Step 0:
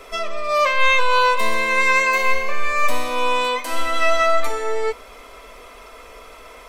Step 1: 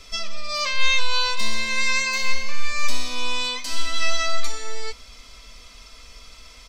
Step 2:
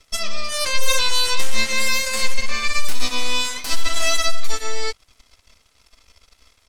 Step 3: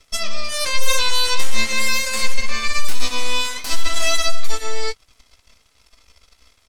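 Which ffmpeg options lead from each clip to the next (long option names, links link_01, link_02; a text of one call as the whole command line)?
ffmpeg -i in.wav -af "firequalizer=gain_entry='entry(160,0);entry(380,-19);entry(4800,6);entry(11000,-11)':delay=0.05:min_phase=1,volume=3dB" out.wav
ffmpeg -i in.wav -filter_complex "[0:a]acrossover=split=430|3000[link_01][link_02][link_03];[link_02]acompressor=threshold=-32dB:ratio=2.5[link_04];[link_01][link_04][link_03]amix=inputs=3:normalize=0,aeval=exprs='0.473*(cos(1*acos(clip(val(0)/0.473,-1,1)))-cos(1*PI/2))+0.168*(cos(2*acos(clip(val(0)/0.473,-1,1)))-cos(2*PI/2))+0.133*(cos(3*acos(clip(val(0)/0.473,-1,1)))-cos(3*PI/2))+0.168*(cos(4*acos(clip(val(0)/0.473,-1,1)))-cos(4*PI/2))+0.15*(cos(8*acos(clip(val(0)/0.473,-1,1)))-cos(8*PI/2))':channel_layout=same,volume=-1.5dB" out.wav
ffmpeg -i in.wav -filter_complex "[0:a]asplit=2[link_01][link_02];[link_02]adelay=18,volume=-12dB[link_03];[link_01][link_03]amix=inputs=2:normalize=0" out.wav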